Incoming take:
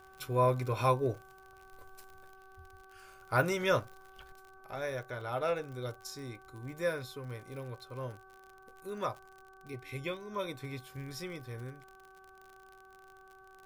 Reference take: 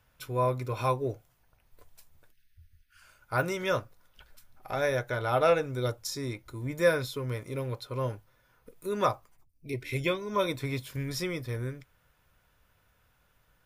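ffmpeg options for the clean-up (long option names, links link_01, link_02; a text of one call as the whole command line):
ffmpeg -i in.wav -af "adeclick=threshold=4,bandreject=frequency=381.4:width_type=h:width=4,bandreject=frequency=762.8:width_type=h:width=4,bandreject=frequency=1144.2:width_type=h:width=4,bandreject=frequency=1525.6:width_type=h:width=4,agate=range=-21dB:threshold=-49dB,asetnsamples=nb_out_samples=441:pad=0,asendcmd='4.32 volume volume 9dB',volume=0dB" out.wav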